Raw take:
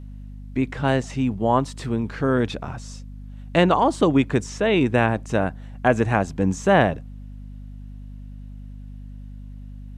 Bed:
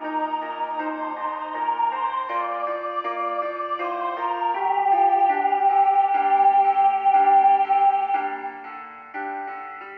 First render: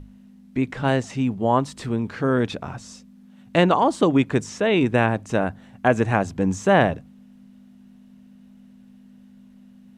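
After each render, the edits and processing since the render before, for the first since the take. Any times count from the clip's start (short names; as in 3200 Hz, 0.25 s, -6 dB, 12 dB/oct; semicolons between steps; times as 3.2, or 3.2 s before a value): notches 50/100/150 Hz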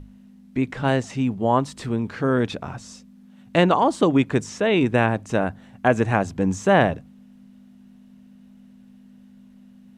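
nothing audible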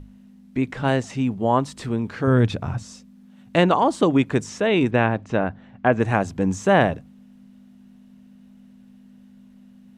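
2.27–2.83 bell 100 Hz +12 dB 1.3 oct; 4.9–5.99 LPF 4600 Hz -> 2700 Hz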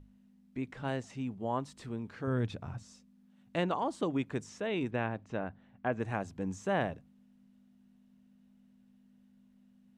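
gain -14.5 dB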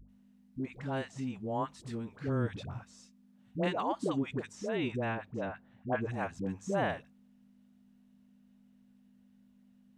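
dispersion highs, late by 89 ms, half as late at 610 Hz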